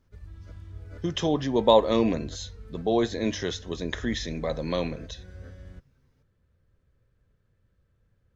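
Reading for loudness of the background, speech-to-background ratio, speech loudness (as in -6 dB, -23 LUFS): -44.5 LUFS, 18.0 dB, -26.5 LUFS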